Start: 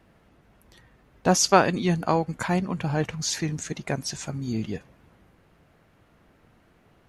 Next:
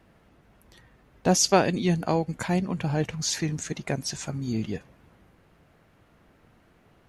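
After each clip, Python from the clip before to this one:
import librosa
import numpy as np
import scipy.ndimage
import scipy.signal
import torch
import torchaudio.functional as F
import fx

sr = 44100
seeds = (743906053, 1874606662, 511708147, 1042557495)

y = fx.dynamic_eq(x, sr, hz=1200.0, q=1.4, threshold_db=-39.0, ratio=4.0, max_db=-8)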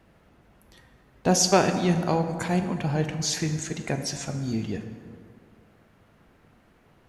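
y = fx.rev_plate(x, sr, seeds[0], rt60_s=2.2, hf_ratio=0.55, predelay_ms=0, drr_db=6.5)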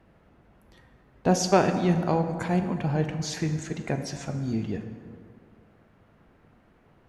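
y = fx.high_shelf(x, sr, hz=3300.0, db=-10.0)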